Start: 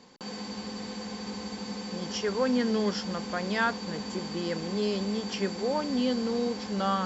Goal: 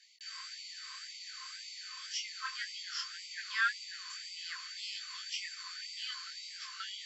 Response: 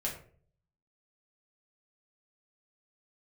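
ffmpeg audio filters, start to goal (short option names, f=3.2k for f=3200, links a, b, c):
-af "flanger=delay=18:depth=7.3:speed=1.8,afftfilt=real='re*gte(b*sr/1024,980*pow(2000/980,0.5+0.5*sin(2*PI*1.9*pts/sr)))':imag='im*gte(b*sr/1024,980*pow(2000/980,0.5+0.5*sin(2*PI*1.9*pts/sr)))':win_size=1024:overlap=0.75,volume=1dB"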